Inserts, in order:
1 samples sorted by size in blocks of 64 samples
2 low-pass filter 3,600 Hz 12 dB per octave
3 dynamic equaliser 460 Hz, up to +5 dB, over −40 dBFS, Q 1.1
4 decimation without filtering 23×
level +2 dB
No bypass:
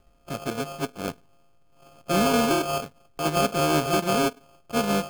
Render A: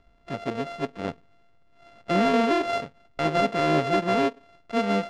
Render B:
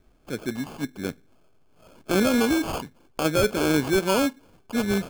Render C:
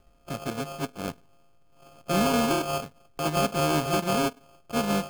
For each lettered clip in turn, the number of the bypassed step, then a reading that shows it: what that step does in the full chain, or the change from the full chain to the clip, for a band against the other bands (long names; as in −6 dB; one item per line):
4, 8 kHz band −13.5 dB
1, 1 kHz band −5.0 dB
3, 125 Hz band +2.0 dB